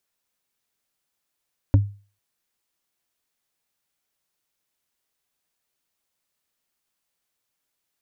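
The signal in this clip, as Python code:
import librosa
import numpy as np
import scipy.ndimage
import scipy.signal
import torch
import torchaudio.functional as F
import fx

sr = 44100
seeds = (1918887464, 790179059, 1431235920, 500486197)

y = fx.strike_wood(sr, length_s=0.45, level_db=-8.5, body='bar', hz=101.0, decay_s=0.36, tilt_db=7.0, modes=5)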